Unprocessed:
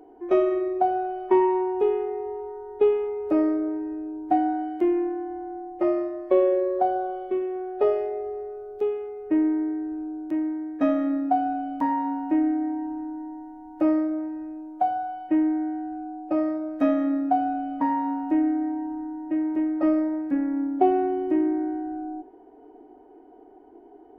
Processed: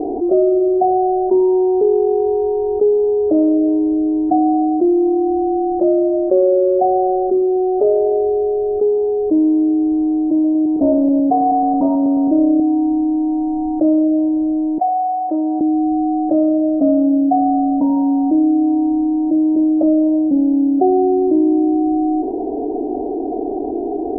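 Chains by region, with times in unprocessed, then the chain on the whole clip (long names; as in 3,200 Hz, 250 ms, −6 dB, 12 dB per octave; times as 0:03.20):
0:10.44–0:12.60: feedback delay that plays each chunk backwards 108 ms, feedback 43%, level −9 dB + highs frequency-modulated by the lows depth 0.29 ms
0:14.78–0:15.61: running median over 25 samples + Bessel high-pass filter 650 Hz + spectral tilt +3.5 dB per octave
whole clip: elliptic low-pass filter 700 Hz, stop band 70 dB; envelope flattener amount 70%; level +5 dB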